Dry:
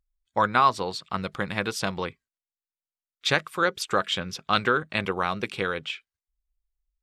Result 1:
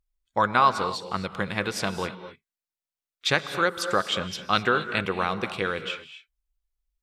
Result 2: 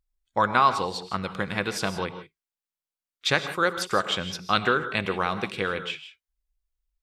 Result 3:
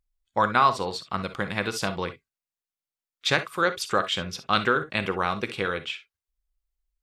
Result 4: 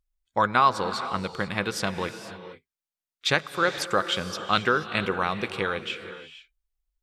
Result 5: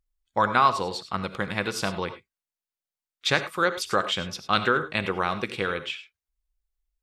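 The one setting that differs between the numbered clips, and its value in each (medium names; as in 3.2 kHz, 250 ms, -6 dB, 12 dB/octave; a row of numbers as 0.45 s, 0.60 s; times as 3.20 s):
gated-style reverb, gate: 280 ms, 190 ms, 80 ms, 510 ms, 120 ms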